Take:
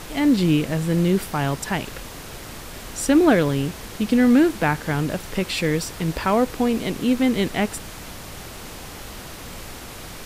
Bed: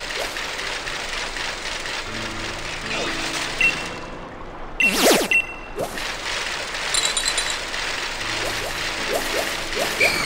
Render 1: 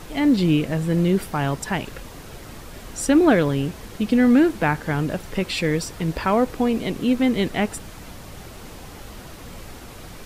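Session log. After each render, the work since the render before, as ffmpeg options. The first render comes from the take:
-af "afftdn=nr=6:nf=-37"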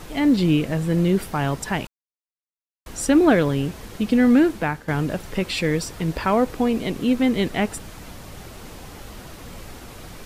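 -filter_complex "[0:a]asplit=4[s0][s1][s2][s3];[s0]atrim=end=1.87,asetpts=PTS-STARTPTS,afade=t=out:st=1.866:d=0.004:c=hsin[s4];[s1]atrim=start=1.87:end=2.86,asetpts=PTS-STARTPTS,volume=0[s5];[s2]atrim=start=2.86:end=4.88,asetpts=PTS-STARTPTS,afade=t=in:d=0.004:c=hsin,afade=t=out:st=1.46:d=0.56:c=qsin:silence=0.266073[s6];[s3]atrim=start=4.88,asetpts=PTS-STARTPTS,afade=t=in:d=0.004:c=hsin:silence=0.266073[s7];[s4][s5][s6][s7]concat=n=4:v=0:a=1"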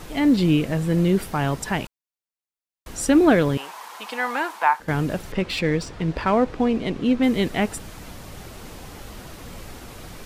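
-filter_complex "[0:a]asettb=1/sr,asplit=3[s0][s1][s2];[s0]atrim=end=3.574[s3];[s1]atrim=start=3.57:end=4.8,asetpts=PTS-STARTPTS,afade=t=in:d=0.004:c=qsin,afade=t=out:st=1.226:d=0.004:c=qsin,highpass=f=940:t=q:w=4.7[s4];[s2]atrim=start=4.796[s5];[s3][s4]acrossfade=d=0.004:c1=hsin:c2=qsin[s6];[s6][s5]acrossfade=d=0.004:c1=qsin:c2=hsin,asettb=1/sr,asplit=3[s7][s8][s9];[s7]atrim=end=5.324[s10];[s8]atrim=start=5.32:end=7.23,asetpts=PTS-STARTPTS,afade=t=in:d=0.004:c=qsin,afade=t=out:st=1.906:d=0.004:c=qsin,adynamicsmooth=sensitivity=2.5:basefreq=4400[s11];[s9]atrim=start=7.226[s12];[s10][s11]acrossfade=d=0.004:c1=hsin:c2=qsin[s13];[s13][s12]acrossfade=d=0.004:c1=qsin:c2=hsin"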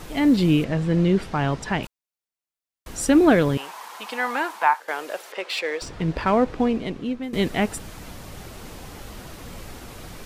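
-filter_complex "[0:a]asettb=1/sr,asplit=3[s0][s1][s2];[s0]atrim=end=0.644[s3];[s1]atrim=start=0.64:end=1.83,asetpts=PTS-STARTPTS,afade=t=in:d=0.004:c=qsin,afade=t=out:st=1.186:d=0.004:c=qsin,lowpass=5400[s4];[s2]atrim=start=1.826[s5];[s3][s4]acrossfade=d=0.004:c1=hsin:c2=qsin[s6];[s6][s5]acrossfade=d=0.004:c1=qsin:c2=hsin,asettb=1/sr,asplit=3[s7][s8][s9];[s7]atrim=end=4.744[s10];[s8]atrim=start=4.74:end=5.82,asetpts=PTS-STARTPTS,afade=t=in:d=0.004:c=qsin,afade=t=out:st=1.076:d=0.004:c=qsin,highpass=f=470:w=0.5412,highpass=f=470:w=1.3066[s11];[s9]atrim=start=5.816[s12];[s10][s11]acrossfade=d=0.004:c1=hsin:c2=qsin[s13];[s13][s12]acrossfade=d=0.004:c1=qsin:c2=hsin,asplit=2[s14][s15];[s14]atrim=end=7.33,asetpts=PTS-STARTPTS,afade=t=out:st=6.61:d=0.72:silence=0.149624[s16];[s15]atrim=start=7.33,asetpts=PTS-STARTPTS,afade=t=in:d=0.004:c=hsin:silence=0.149624[s17];[s16][s17]concat=n=2:v=0:a=1"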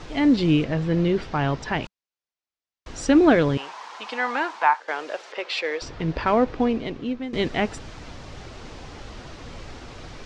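-af "lowpass=f=6200:w=0.5412,lowpass=f=6200:w=1.3066,equalizer=f=190:w=7.4:g=-8.5"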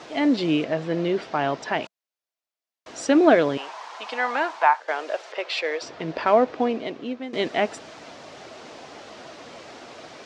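-af "highpass=270,equalizer=f=650:w=4.7:g=7"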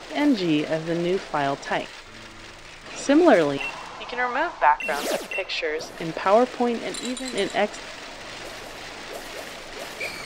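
-filter_complex "[1:a]volume=0.211[s0];[0:a][s0]amix=inputs=2:normalize=0"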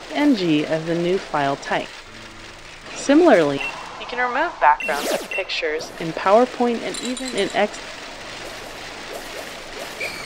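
-af "volume=1.5,alimiter=limit=0.794:level=0:latency=1"

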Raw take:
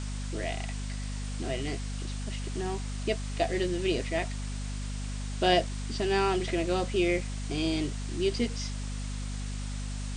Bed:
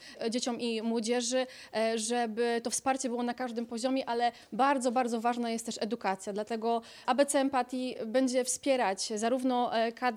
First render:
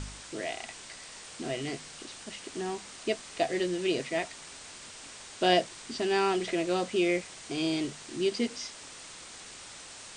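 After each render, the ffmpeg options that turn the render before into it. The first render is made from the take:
-af "bandreject=f=50:t=h:w=4,bandreject=f=100:t=h:w=4,bandreject=f=150:t=h:w=4,bandreject=f=200:t=h:w=4,bandreject=f=250:t=h:w=4"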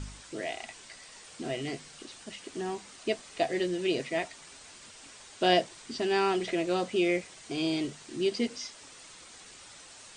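-af "afftdn=nr=6:nf=-47"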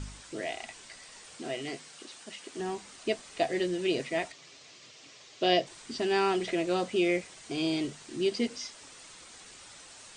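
-filter_complex "[0:a]asettb=1/sr,asplit=3[s0][s1][s2];[s0]atrim=end=1.384[s3];[s1]atrim=start=1.38:end=2.6,asetpts=PTS-STARTPTS,afade=t=in:d=0.004:c=qsin,afade=t=out:st=1.216:d=0.004:c=qsin,highpass=f=290:p=1[s4];[s2]atrim=start=2.596[s5];[s3][s4]acrossfade=d=0.004:c1=hsin:c2=qsin[s6];[s6][s5]acrossfade=d=0.004:c1=qsin:c2=hsin,asettb=1/sr,asplit=3[s7][s8][s9];[s7]atrim=end=4.324[s10];[s8]atrim=start=4.32:end=5.67,asetpts=PTS-STARTPTS,afade=t=in:d=0.004:c=qsin,afade=t=out:st=1.346:d=0.004:c=qsin,highpass=130,equalizer=f=140:t=q:w=4:g=6,equalizer=f=210:t=q:w=4:g=-9,equalizer=f=890:t=q:w=4:g=-8,equalizer=f=1500:t=q:w=4:g=-8,lowpass=f=6400:w=0.5412,lowpass=f=6400:w=1.3066[s11];[s9]atrim=start=5.666[s12];[s10][s11]acrossfade=d=0.004:c1=hsin:c2=qsin[s13];[s13][s12]acrossfade=d=0.004:c1=qsin:c2=hsin"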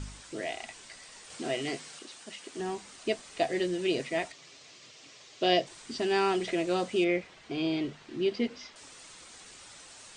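-filter_complex "[0:a]asettb=1/sr,asplit=3[s0][s1][s2];[s0]atrim=end=7.044[s3];[s1]atrim=start=7.04:end=8.76,asetpts=PTS-STARTPTS,afade=t=in:d=0.004:c=qsin,afade=t=out:st=1.716:d=0.004:c=qsin,lowpass=3500[s4];[s2]atrim=start=8.756[s5];[s3][s4]acrossfade=d=0.004:c1=hsin:c2=qsin[s6];[s6][s5]acrossfade=d=0.004:c1=qsin:c2=hsin,asplit=3[s7][s8][s9];[s7]atrim=end=1.302[s10];[s8]atrim=start=1.298:end=1.992,asetpts=PTS-STARTPTS,volume=1.5[s11];[s9]atrim=start=1.988[s12];[s10][s11]acrossfade=d=0.004:c1=hsin:c2=hsin[s13];[s13][s12]acrossfade=d=0.004:c1=hsin:c2=hsin"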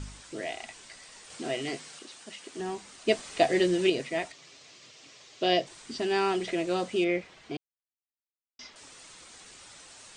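-filter_complex "[0:a]asettb=1/sr,asplit=3[s0][s1][s2];[s0]atrim=end=3.084[s3];[s1]atrim=start=3.08:end=3.9,asetpts=PTS-STARTPTS,afade=t=in:d=0.004:c=qsin,afade=t=out:st=0.816:d=0.004:c=qsin,acontrast=41[s4];[s2]atrim=start=3.896[s5];[s3][s4]acrossfade=d=0.004:c1=hsin:c2=qsin[s6];[s6][s5]acrossfade=d=0.004:c1=qsin:c2=hsin,asplit=3[s7][s8][s9];[s7]atrim=end=7.57,asetpts=PTS-STARTPTS,afade=t=out:st=7.566:d=0.004:c=hsin[s10];[s8]atrim=start=7.57:end=8.59,asetpts=PTS-STARTPTS,volume=0[s11];[s9]atrim=start=8.59,asetpts=PTS-STARTPTS,afade=t=in:d=0.004:c=hsin[s12];[s10][s11][s12]concat=n=3:v=0:a=1"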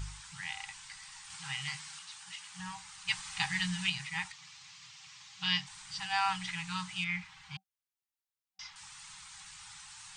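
-af "afftfilt=real='re*(1-between(b*sr/4096,190,770))':imag='im*(1-between(b*sr/4096,190,770))':win_size=4096:overlap=0.75"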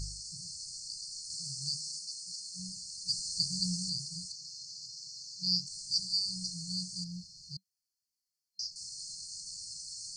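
-af "afftfilt=real='re*(1-between(b*sr/4096,280,4200))':imag='im*(1-between(b*sr/4096,280,4200))':win_size=4096:overlap=0.75,equalizer=f=3500:t=o:w=2:g=15"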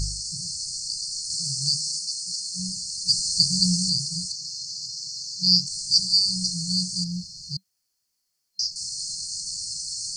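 -af "volume=3.98"

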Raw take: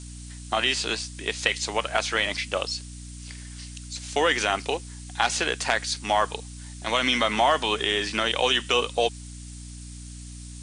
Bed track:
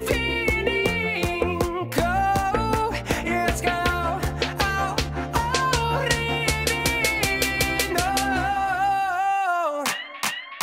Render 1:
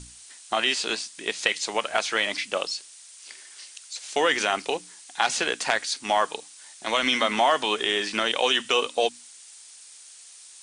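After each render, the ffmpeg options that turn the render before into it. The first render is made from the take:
-af "bandreject=f=60:t=h:w=6,bandreject=f=120:t=h:w=6,bandreject=f=180:t=h:w=6,bandreject=f=240:t=h:w=6,bandreject=f=300:t=h:w=6"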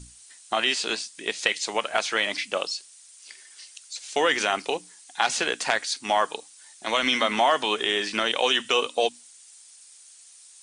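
-af "afftdn=nr=6:nf=-48"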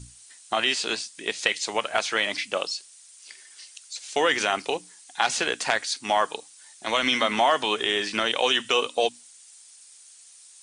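-af "equalizer=f=110:w=3:g=7"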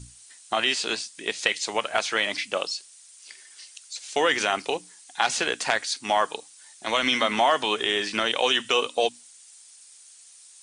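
-af anull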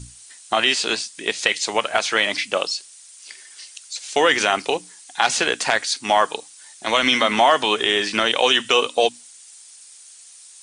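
-af "volume=1.88,alimiter=limit=0.708:level=0:latency=1"

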